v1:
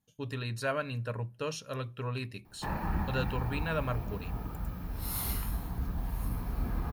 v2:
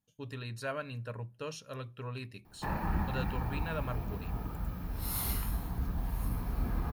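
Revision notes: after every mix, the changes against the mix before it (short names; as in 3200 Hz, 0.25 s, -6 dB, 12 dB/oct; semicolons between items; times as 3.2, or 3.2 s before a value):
speech -5.0 dB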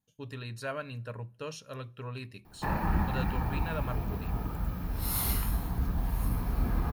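speech: send +7.0 dB; background +4.0 dB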